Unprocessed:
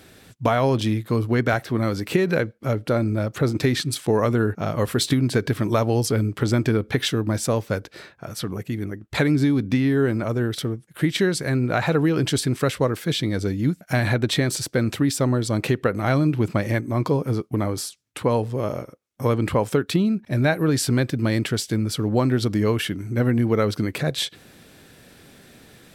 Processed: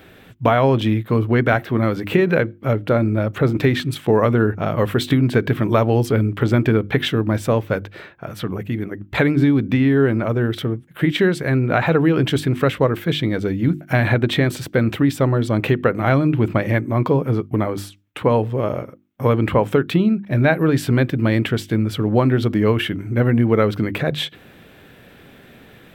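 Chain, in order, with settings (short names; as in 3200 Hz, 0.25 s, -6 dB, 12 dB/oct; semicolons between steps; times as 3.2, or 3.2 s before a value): band shelf 7000 Hz -13 dB; notches 50/100/150/200/250/300/350 Hz; gain +4.5 dB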